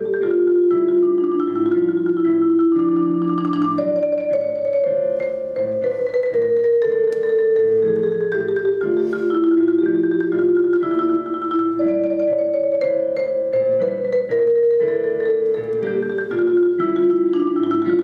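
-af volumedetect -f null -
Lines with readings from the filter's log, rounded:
mean_volume: -17.8 dB
max_volume: -7.8 dB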